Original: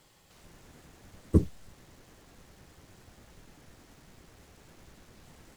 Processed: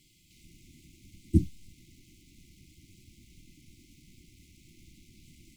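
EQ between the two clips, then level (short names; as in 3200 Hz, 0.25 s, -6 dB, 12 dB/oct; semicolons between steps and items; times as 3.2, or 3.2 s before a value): brick-wall FIR band-stop 370–2000 Hz; 0.0 dB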